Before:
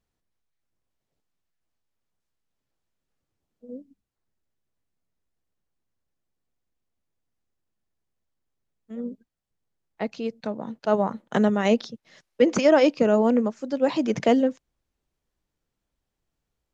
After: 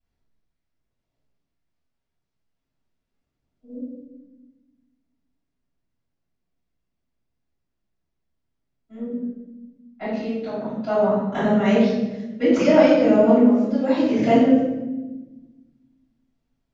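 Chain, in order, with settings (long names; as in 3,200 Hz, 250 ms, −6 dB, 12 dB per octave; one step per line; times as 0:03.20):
low-pass filter 6,100 Hz 12 dB per octave
convolution reverb RT60 1.1 s, pre-delay 3 ms, DRR −14.5 dB
level −15.5 dB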